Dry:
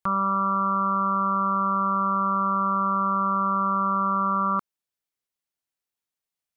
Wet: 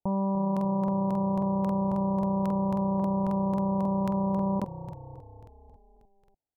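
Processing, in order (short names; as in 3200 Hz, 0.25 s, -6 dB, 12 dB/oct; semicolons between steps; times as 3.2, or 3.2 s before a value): steep low-pass 930 Hz 96 dB/oct; frequency-shifting echo 0.291 s, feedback 60%, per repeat -31 Hz, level -14 dB; crackling interface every 0.27 s, samples 2048, repeat, from 0.52; gain +3.5 dB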